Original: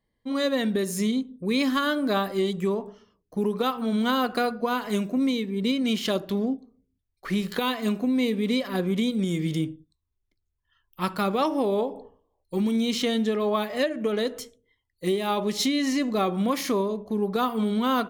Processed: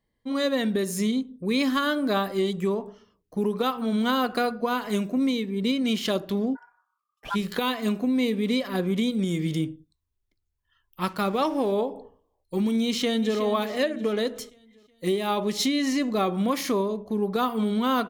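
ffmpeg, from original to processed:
ffmpeg -i in.wav -filter_complex "[0:a]asplit=3[link_01][link_02][link_03];[link_01]afade=type=out:start_time=6.55:duration=0.02[link_04];[link_02]aeval=exprs='val(0)*sin(2*PI*1200*n/s)':channel_layout=same,afade=type=in:start_time=6.55:duration=0.02,afade=type=out:start_time=7.34:duration=0.02[link_05];[link_03]afade=type=in:start_time=7.34:duration=0.02[link_06];[link_04][link_05][link_06]amix=inputs=3:normalize=0,asettb=1/sr,asplit=3[link_07][link_08][link_09];[link_07]atrim=end=11.044[link_10];[link_08]atrim=start=11.04:end=11.72,asetpts=PTS-STARTPTS,afade=type=in:duration=0.004:curve=qsin,afade=type=out:start_time=0.676:duration=0.004:curve=qsin,aeval=exprs='sgn(val(0))*max(abs(val(0))-0.00422,0)':channel_layout=same[link_11];[link_09]atrim=start=11.716[link_12];[link_10][link_11]acrossfade=duration=0.004:curve1=hsin:curve2=qsin[link_13];[link_13][link_12]acrossfade=duration=0.004:curve1=qsin:curve2=hsin,asplit=2[link_14][link_15];[link_15]afade=type=in:start_time=12.85:duration=0.01,afade=type=out:start_time=13.38:duration=0.01,aecho=0:1:370|740|1110|1480|1850:0.281838|0.126827|0.0570723|0.0256825|0.0115571[link_16];[link_14][link_16]amix=inputs=2:normalize=0" out.wav

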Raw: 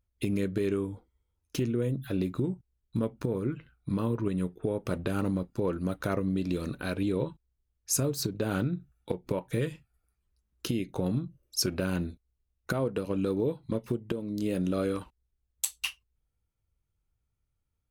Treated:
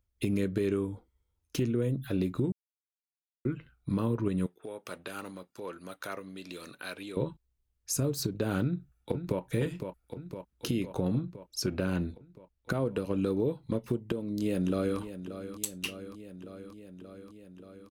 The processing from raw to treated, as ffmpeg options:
ffmpeg -i in.wav -filter_complex "[0:a]asettb=1/sr,asplit=3[link_01][link_02][link_03];[link_01]atrim=end=4.464[link_04];[link_02]atrim=start=4.46:end=7.17,asetpts=PTS-STARTPTS,afade=type=in:duration=0.004:curve=qsin,afade=type=out:start_time=2.706:duration=0.004:curve=qsin,highpass=frequency=1400:poles=1[link_05];[link_03]atrim=start=7.166[link_06];[link_04][link_05]acrossfade=duration=0.004:curve1=hsin:curve2=qsin[link_07];[link_07][link_06]acrossfade=duration=0.004:curve1=qsin:curve2=hsin,asplit=2[link_08][link_09];[link_09]afade=type=in:start_time=8.63:duration=0.01,afade=type=out:start_time=9.42:duration=0.01,aecho=0:1:510|1020|1530|2040|2550|3060|3570|4080|4590|5100|5610:0.421697|0.295188|0.206631|0.144642|0.101249|0.0708745|0.0496122|0.0347285|0.02431|0.017017|0.0119119[link_10];[link_08][link_10]amix=inputs=2:normalize=0,asettb=1/sr,asplit=3[link_11][link_12][link_13];[link_11]atrim=end=11.014[link_14];[link_12]atrim=start=11.01:end=12.72,asetpts=PTS-STARTPTS,afade=type=in:duration=0.004:curve=qsin,afade=type=out:start_time=1.706:duration=0.004:curve=qsin,highshelf=frequency=6200:gain=-7.5[link_15];[link_13]atrim=start=12.716[link_16];[link_14][link_15]acrossfade=duration=0.004:curve1=hsin:curve2=qsin[link_17];[link_17][link_16]acrossfade=duration=0.004:curve1=qsin:curve2=hsin,asplit=2[link_18][link_19];[link_19]afade=type=in:start_time=14.05:duration=0.01,afade=type=out:start_time=14.99:duration=0.01,aecho=0:1:580|1160|1740|2320|2900|3480|4060|4640|5220|5800|6380|6960:0.251189|0.188391|0.141294|0.10597|0.0794777|0.0596082|0.0447062|0.0335296|0.0251472|0.0188604|0.0141453|0.010609[link_20];[link_18][link_20]amix=inputs=2:normalize=0,asplit=3[link_21][link_22][link_23];[link_21]atrim=end=2.52,asetpts=PTS-STARTPTS,afade=type=out:start_time=2.516:duration=0.004:curve=hsin[link_24];[link_22]atrim=start=2.52:end=3.45,asetpts=PTS-STARTPTS,volume=0[link_25];[link_23]atrim=start=3.45,asetpts=PTS-STARTPTS,afade=type=in:duration=0.004:curve=hsin[link_26];[link_24][link_25][link_26]concat=n=3:v=0:a=1,acrossover=split=410[link_27][link_28];[link_28]acompressor=threshold=-33dB:ratio=2[link_29];[link_27][link_29]amix=inputs=2:normalize=0" out.wav

